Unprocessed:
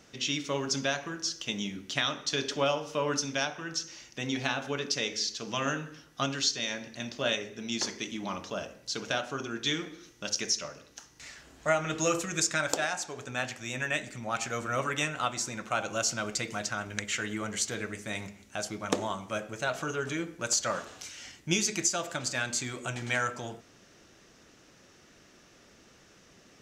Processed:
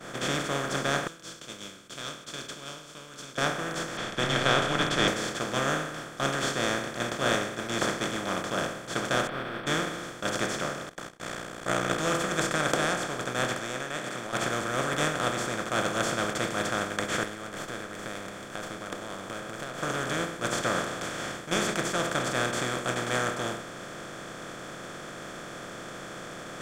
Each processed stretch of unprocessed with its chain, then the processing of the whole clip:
1.07–3.38 s: inverse Chebyshev high-pass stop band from 2 kHz + peaking EQ 11 kHz -13.5 dB 0.89 oct
3.97–5.08 s: frequency shift -130 Hz + resonant low-pass 3.3 kHz, resonance Q 9.3
9.27–9.67 s: CVSD coder 16 kbps + detune thickener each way 58 cents
10.89–11.98 s: ring modulator 30 Hz + gate -60 dBFS, range -26 dB
13.59–14.33 s: frequency weighting A + compression 3:1, threshold -39 dBFS
17.23–19.82 s: compression 12:1, threshold -44 dBFS + sliding maximum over 3 samples
whole clip: spectral levelling over time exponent 0.2; expander -11 dBFS; high-order bell 4.2 kHz -11.5 dB

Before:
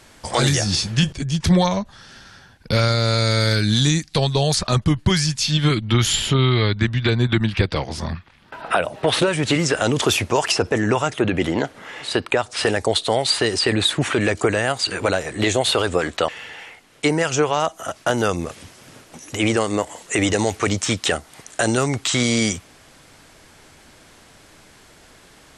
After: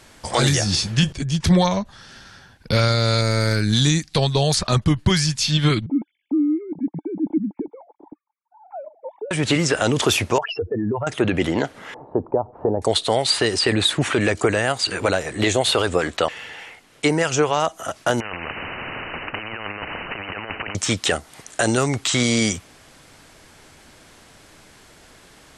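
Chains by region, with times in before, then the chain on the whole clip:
3.21–3.73 s: partial rectifier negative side -3 dB + peaking EQ 3.4 kHz -12 dB 0.47 oct
5.86–9.31 s: formants replaced by sine waves + cascade formant filter u
10.38–11.07 s: spectral contrast enhancement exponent 2.7 + compression 3:1, threshold -19 dBFS + distance through air 290 m
11.94–12.82 s: companding laws mixed up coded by mu + Chebyshev low-pass 920 Hz, order 4
18.20–20.75 s: compressor with a negative ratio -25 dBFS, ratio -0.5 + brick-wall FIR low-pass 3 kHz + spectrum-flattening compressor 10:1
whole clip: none

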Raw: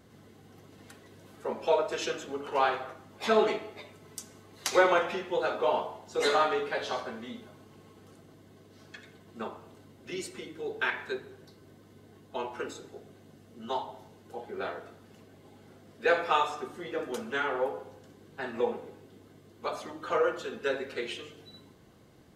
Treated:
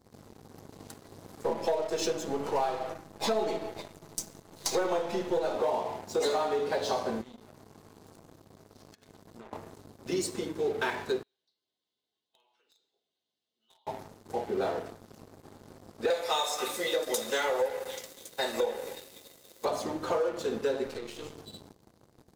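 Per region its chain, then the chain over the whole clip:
1.45–5.56 s: partial rectifier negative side -3 dB + comb 6.1 ms, depth 41%
7.21–9.53 s: hum notches 60/120/180/240/300/360/420/480 Hz + compression, threshold -50 dBFS
11.23–13.87 s: band-pass filter 3.3 kHz, Q 3.5 + compression 2.5:1, threshold -56 dBFS
16.10–19.65 s: tilt EQ +4.5 dB/octave + small resonant body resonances 540/2000/3700 Hz, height 13 dB + repeats whose band climbs or falls 278 ms, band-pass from 1.9 kHz, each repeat 0.7 oct, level -10 dB
20.86–21.34 s: partial rectifier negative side -3 dB + compression 12:1, threshold -41 dBFS
whole clip: high-order bell 2 kHz -9.5 dB; compression 6:1, threshold -34 dBFS; waveshaping leveller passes 3; trim -2.5 dB

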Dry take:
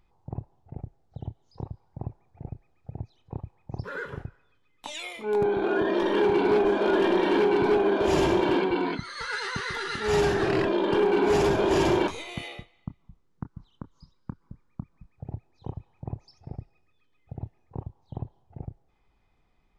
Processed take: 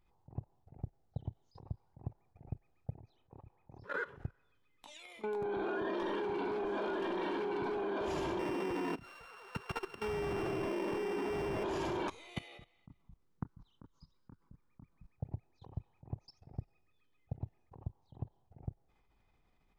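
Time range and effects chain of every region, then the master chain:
2.96–4.17 s: tone controls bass -5 dB, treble -5 dB + tape noise reduction on one side only decoder only
8.39–11.64 s: sorted samples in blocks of 16 samples + low-pass 1.3 kHz 6 dB/octave
whole clip: dynamic bell 1.1 kHz, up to +4 dB, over -41 dBFS, Q 1.8; peak limiter -26 dBFS; level held to a coarse grid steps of 18 dB

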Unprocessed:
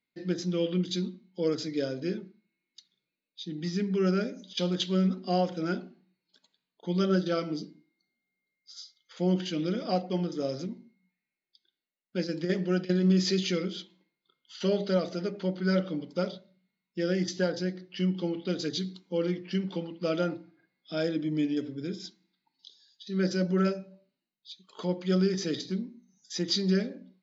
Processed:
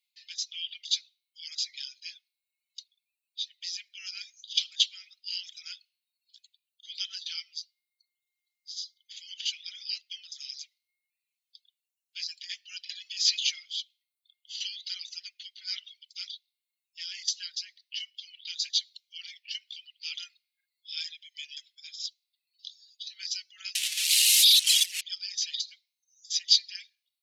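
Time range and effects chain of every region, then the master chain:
23.75–25.01 s: one-bit delta coder 64 kbps, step -28 dBFS + level flattener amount 100%
whole clip: steep high-pass 2.6 kHz 36 dB/octave; reverb removal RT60 0.74 s; trim +8.5 dB

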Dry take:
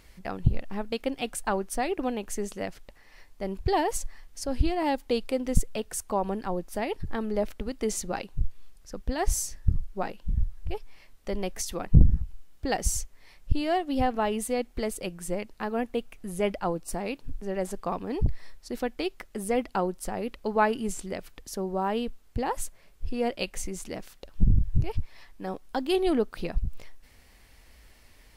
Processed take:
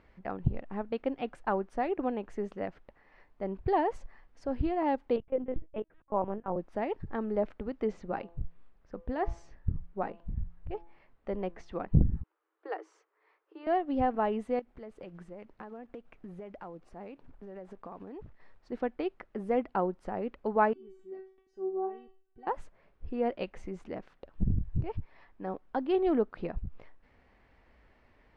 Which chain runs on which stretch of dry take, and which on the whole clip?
5.16–6.56 s: gate -35 dBFS, range -15 dB + LPC vocoder at 8 kHz pitch kept + tape noise reduction on one side only decoder only
7.85–11.73 s: distance through air 83 m + de-hum 169.5 Hz, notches 7
12.23–13.67 s: rippled Chebyshev high-pass 310 Hz, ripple 9 dB + distance through air 54 m
14.59–18.72 s: block-companded coder 5-bit + compression 16:1, threshold -37 dBFS
20.73–22.47 s: peaking EQ 250 Hz +10.5 dB 1.7 oct + feedback comb 380 Hz, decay 0.43 s, mix 100%
whole clip: low-pass 1.6 kHz 12 dB/octave; bass shelf 90 Hz -10 dB; trim -1.5 dB

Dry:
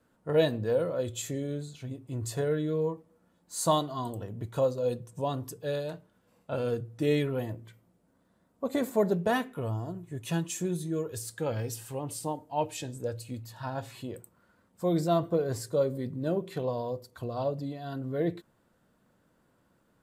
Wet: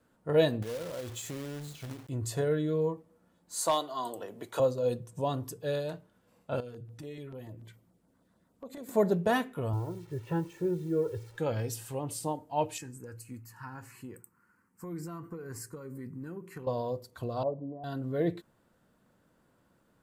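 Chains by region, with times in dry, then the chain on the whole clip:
0.62–2.09 s: compression 4:1, threshold -37 dBFS + companded quantiser 4-bit
3.61–4.60 s: high-pass 420 Hz + overload inside the chain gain 18 dB + three bands compressed up and down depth 40%
6.60–8.89 s: compression 4:1, threshold -42 dBFS + LFO notch saw down 6.9 Hz 320–3300 Hz
9.73–11.38 s: low-pass 1.3 kHz + word length cut 10-bit, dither none + comb 2.2 ms, depth 75%
12.78–16.67 s: high-pass 210 Hz 6 dB/octave + compression 2.5:1, threshold -34 dBFS + static phaser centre 1.5 kHz, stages 4
17.43–17.84 s: steep low-pass 1 kHz + bass shelf 180 Hz -11 dB
whole clip: none

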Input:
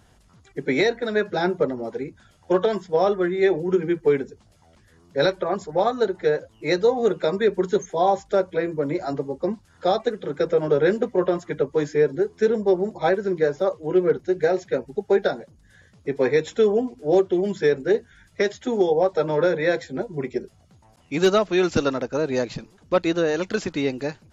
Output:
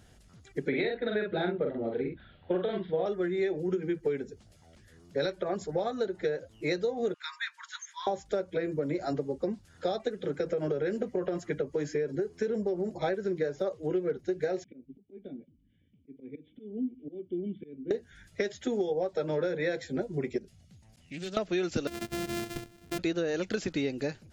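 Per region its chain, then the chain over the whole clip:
0.68–3.06 s: steep low-pass 4 kHz 72 dB/octave + doubling 44 ms -3.5 dB
7.14–8.07 s: Chebyshev high-pass 940 Hz, order 8 + treble shelf 6.4 kHz -6.5 dB
10.27–13.02 s: compression 2.5:1, threshold -20 dBFS + band-stop 3.6 kHz, Q 9.7
14.64–17.91 s: dynamic bell 2.6 kHz, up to -7 dB, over -47 dBFS, Q 1.7 + slow attack 259 ms + cascade formant filter i
20.38–21.37 s: high-order bell 690 Hz -8 dB 2.6 oct + compression 2:1, threshold -44 dBFS + loudspeaker Doppler distortion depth 0.18 ms
21.87–22.99 s: sorted samples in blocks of 128 samples + band-stop 570 Hz, Q 9.9 + compression 4:1, threshold -30 dBFS
whole clip: peaking EQ 1 kHz -9 dB 0.63 oct; compression, threshold -26 dBFS; trim -1 dB

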